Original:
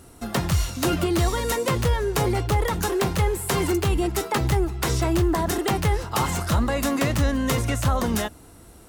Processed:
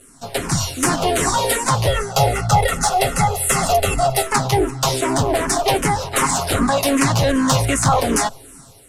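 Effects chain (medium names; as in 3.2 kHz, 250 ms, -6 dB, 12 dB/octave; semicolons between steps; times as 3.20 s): comb filter that takes the minimum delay 7.4 ms; low-pass 11 kHz 24 dB/octave; treble shelf 4.9 kHz +10 dB; 1.87–4.27 s: comb 1.5 ms, depth 89%; dynamic bell 800 Hz, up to +6 dB, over -39 dBFS, Q 0.95; level rider gain up to 7.5 dB; saturation -3 dBFS, distortion -27 dB; barber-pole phaser -2.6 Hz; trim +2 dB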